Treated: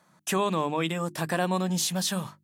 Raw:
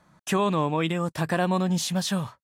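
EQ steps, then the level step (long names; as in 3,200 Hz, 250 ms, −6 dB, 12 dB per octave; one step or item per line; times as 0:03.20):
high-pass filter 140 Hz
high-shelf EQ 6,100 Hz +8.5 dB
mains-hum notches 50/100/150/200/250/300/350 Hz
−2.0 dB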